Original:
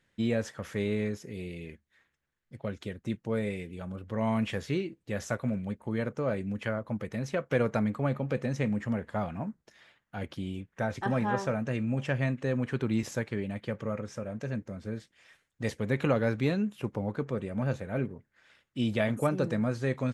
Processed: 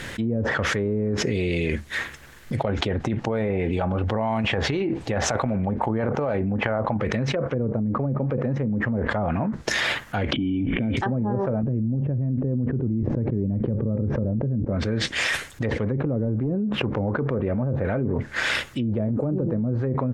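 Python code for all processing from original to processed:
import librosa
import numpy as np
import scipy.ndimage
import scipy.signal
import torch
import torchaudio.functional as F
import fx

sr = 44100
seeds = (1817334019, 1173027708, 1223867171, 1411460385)

y = fx.chain(x, sr, fx.peak_eq(hz=790.0, db=11.0, octaves=0.51),
    fx.over_compress(threshold_db=-32.0, ratio=-0.5), at=(2.64, 7.01))
y = fx.chain(y, sr, fx.formant_cascade(vowel='i'),
    fx.air_absorb(metres=160.0),
    fx.env_flatten(amount_pct=70), at=(10.33, 10.97))
y = fx.chain(y, sr, fx.lowpass(hz=4200.0, slope=12),
    fx.low_shelf(hz=400.0, db=6.0),
    fx.env_flatten(amount_pct=50), at=(11.63, 14.65))
y = fx.chain(y, sr, fx.high_shelf(hz=2100.0, db=-11.0),
    fx.clip_hard(threshold_db=-21.0), at=(16.25, 17.85))
y = fx.env_lowpass_down(y, sr, base_hz=340.0, full_db=-24.0)
y = fx.peak_eq(y, sr, hz=180.0, db=-5.0, octaves=0.41)
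y = fx.env_flatten(y, sr, amount_pct=100)
y = y * librosa.db_to_amplitude(-1.5)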